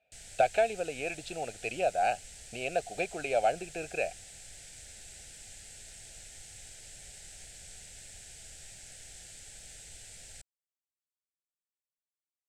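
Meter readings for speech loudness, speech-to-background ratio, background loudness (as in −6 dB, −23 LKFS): −32.0 LKFS, 15.0 dB, −47.0 LKFS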